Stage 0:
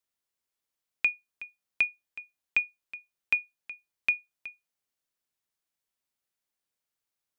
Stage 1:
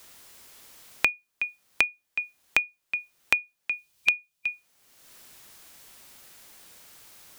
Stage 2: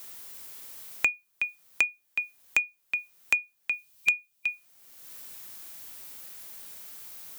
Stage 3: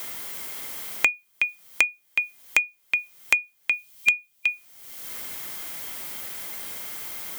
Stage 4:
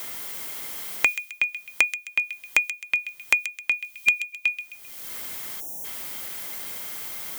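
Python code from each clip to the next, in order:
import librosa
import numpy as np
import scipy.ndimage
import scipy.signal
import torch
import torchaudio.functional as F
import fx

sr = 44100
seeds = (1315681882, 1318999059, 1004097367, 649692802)

y1 = fx.spec_box(x, sr, start_s=3.77, length_s=0.71, low_hz=200.0, high_hz=2400.0, gain_db=-6)
y1 = fx.band_squash(y1, sr, depth_pct=100)
y1 = y1 * librosa.db_to_amplitude(6.0)
y2 = fx.high_shelf(y1, sr, hz=11000.0, db=11.0)
y2 = 10.0 ** (-11.0 / 20.0) * np.tanh(y2 / 10.0 ** (-11.0 / 20.0))
y3 = fx.small_body(y2, sr, hz=(2100.0, 3200.0), ring_ms=45, db=11)
y3 = fx.band_squash(y3, sr, depth_pct=40)
y3 = y3 * librosa.db_to_amplitude(6.0)
y4 = fx.echo_wet_highpass(y3, sr, ms=131, feedback_pct=38, hz=2700.0, wet_db=-8)
y4 = fx.spec_erase(y4, sr, start_s=5.6, length_s=0.24, low_hz=940.0, high_hz=5400.0)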